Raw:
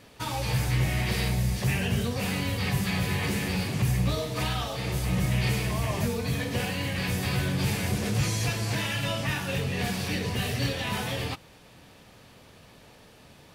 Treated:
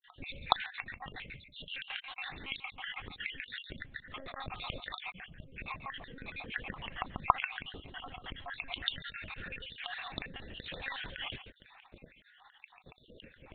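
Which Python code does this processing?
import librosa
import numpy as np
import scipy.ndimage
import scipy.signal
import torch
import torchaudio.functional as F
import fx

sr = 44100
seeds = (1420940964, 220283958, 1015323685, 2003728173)

p1 = fx.spec_dropout(x, sr, seeds[0], share_pct=69)
p2 = fx.dynamic_eq(p1, sr, hz=930.0, q=3.2, threshold_db=-55.0, ratio=4.0, max_db=-6)
p3 = fx.over_compress(p2, sr, threshold_db=-40.0, ratio=-1.0)
p4 = p3 + fx.echo_single(p3, sr, ms=140, db=-11.0, dry=0)
p5 = fx.lpc_monotone(p4, sr, seeds[1], pitch_hz=270.0, order=16)
y = p5 * 10.0 ** (-4.5 / 20.0)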